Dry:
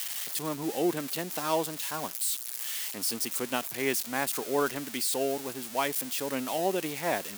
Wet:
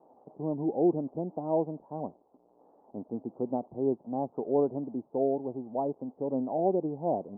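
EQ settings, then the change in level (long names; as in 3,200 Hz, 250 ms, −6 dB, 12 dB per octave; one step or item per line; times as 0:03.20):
Butterworth low-pass 850 Hz 48 dB per octave
spectral tilt −2.5 dB per octave
low-shelf EQ 98 Hz −11 dB
0.0 dB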